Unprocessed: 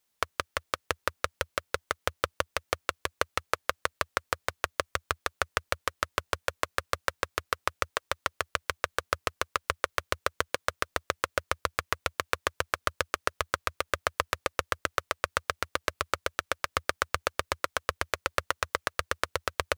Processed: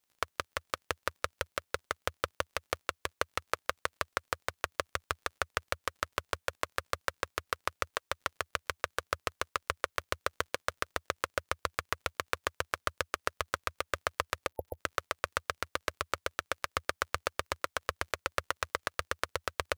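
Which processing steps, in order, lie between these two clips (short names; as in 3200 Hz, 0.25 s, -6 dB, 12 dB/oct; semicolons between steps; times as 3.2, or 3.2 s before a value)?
spectral delete 14.47–14.77, 900–11000 Hz; crackle 42/s -48 dBFS; gain -4 dB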